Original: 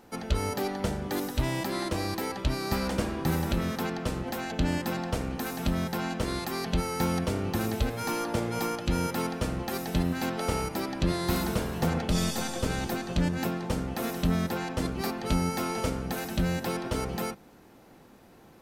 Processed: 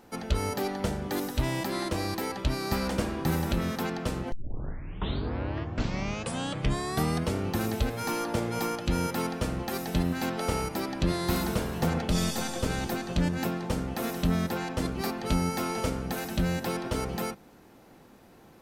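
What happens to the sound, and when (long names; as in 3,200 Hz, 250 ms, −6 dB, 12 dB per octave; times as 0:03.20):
0:04.32: tape start 3.06 s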